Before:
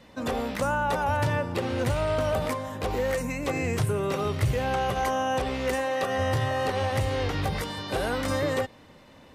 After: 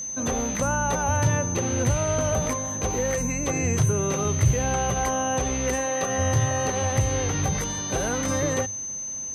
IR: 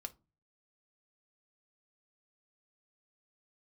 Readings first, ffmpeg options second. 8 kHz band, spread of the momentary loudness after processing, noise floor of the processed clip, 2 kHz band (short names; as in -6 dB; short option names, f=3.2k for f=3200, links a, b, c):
+18.5 dB, 4 LU, -33 dBFS, 0.0 dB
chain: -af "aeval=exprs='val(0)+0.0355*sin(2*PI*6200*n/s)':c=same,bass=f=250:g=6,treble=f=4k:g=-1,bandreject=f=50:t=h:w=6,bandreject=f=100:t=h:w=6"